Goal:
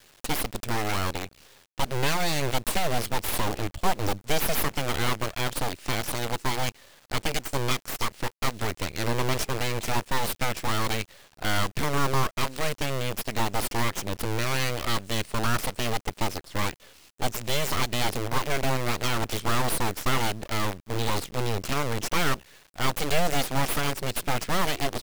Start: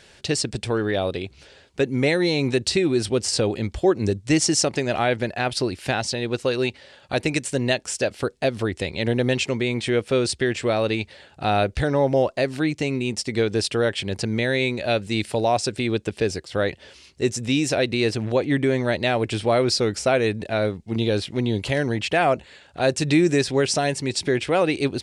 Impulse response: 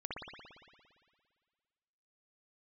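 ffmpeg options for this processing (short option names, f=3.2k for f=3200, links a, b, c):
-af "acrusher=bits=5:dc=4:mix=0:aa=0.000001,aeval=exprs='abs(val(0))':c=same,volume=-3dB"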